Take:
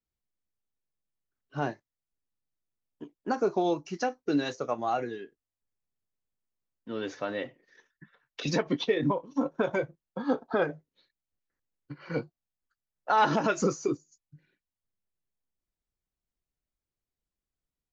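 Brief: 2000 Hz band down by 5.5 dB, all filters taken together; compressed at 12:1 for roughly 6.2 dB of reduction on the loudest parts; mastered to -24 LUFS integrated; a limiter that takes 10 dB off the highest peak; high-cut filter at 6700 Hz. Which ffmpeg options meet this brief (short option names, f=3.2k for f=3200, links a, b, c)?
-af "lowpass=6.7k,equalizer=f=2k:t=o:g=-8.5,acompressor=threshold=-27dB:ratio=12,volume=15dB,alimiter=limit=-12.5dB:level=0:latency=1"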